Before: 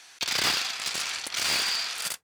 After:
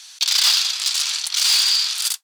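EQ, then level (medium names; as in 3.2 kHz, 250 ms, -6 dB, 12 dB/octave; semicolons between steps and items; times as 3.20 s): high-pass 860 Hz 24 dB/octave; resonant high shelf 2.8 kHz +8 dB, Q 1.5; +1.5 dB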